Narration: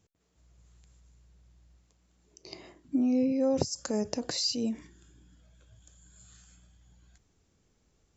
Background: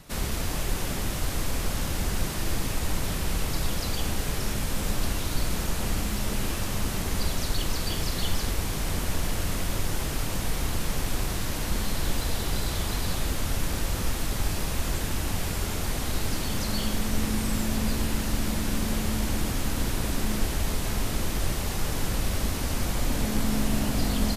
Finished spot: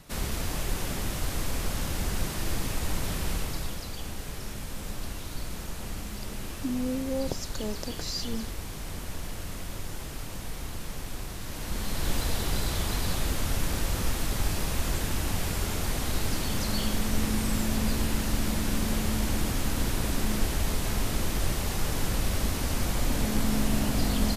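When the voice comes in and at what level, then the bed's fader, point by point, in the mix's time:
3.70 s, -4.5 dB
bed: 3.30 s -2 dB
3.88 s -8.5 dB
11.38 s -8.5 dB
12.14 s -0.5 dB

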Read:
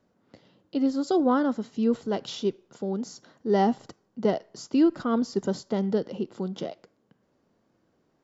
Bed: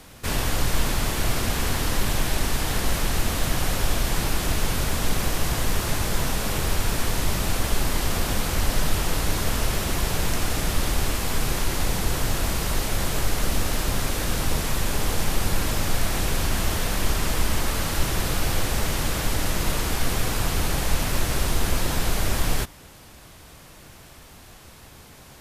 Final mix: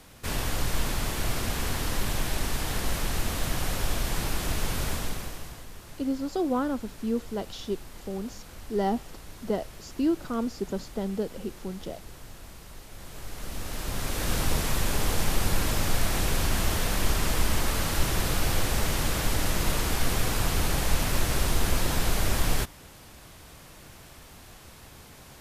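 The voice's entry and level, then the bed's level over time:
5.25 s, -4.5 dB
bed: 4.92 s -5 dB
5.68 s -21 dB
12.87 s -21 dB
14.33 s -2 dB

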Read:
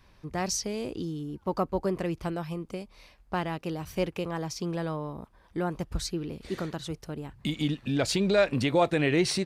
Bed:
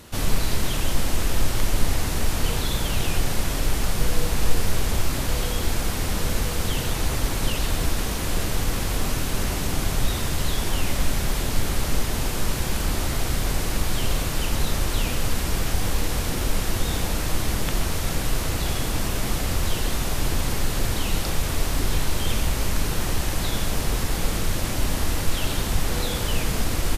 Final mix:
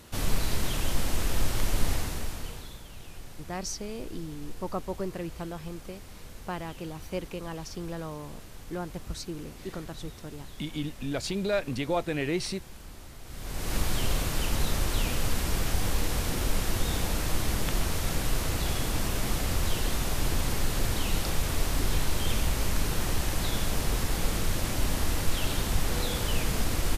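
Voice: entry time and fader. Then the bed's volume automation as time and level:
3.15 s, -5.0 dB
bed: 1.93 s -5 dB
2.85 s -21.5 dB
13.22 s -21.5 dB
13.75 s -4 dB

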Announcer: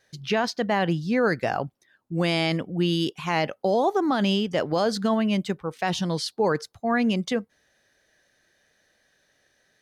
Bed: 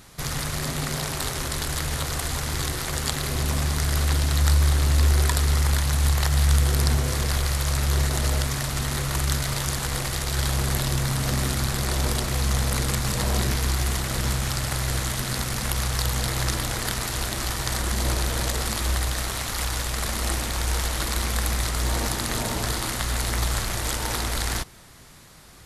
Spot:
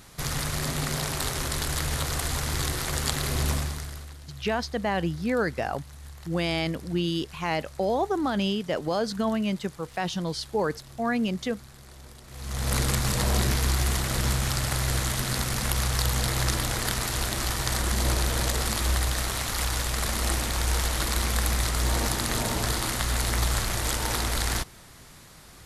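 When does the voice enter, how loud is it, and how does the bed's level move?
4.15 s, -3.5 dB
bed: 3.51 s -1 dB
4.17 s -23 dB
12.22 s -23 dB
12.73 s -0.5 dB

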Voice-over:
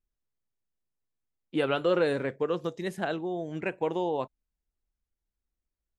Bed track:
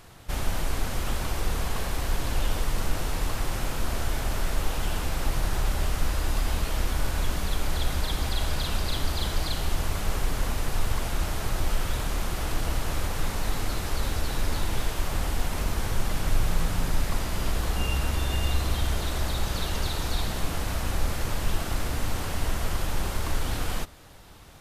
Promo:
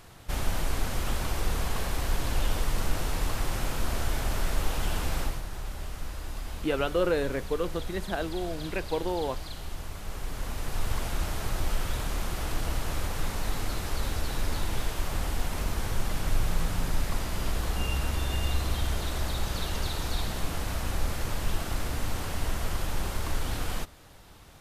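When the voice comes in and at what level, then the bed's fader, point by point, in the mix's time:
5.10 s, -1.0 dB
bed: 5.20 s -1 dB
5.44 s -10.5 dB
10.00 s -10.5 dB
10.94 s -2.5 dB

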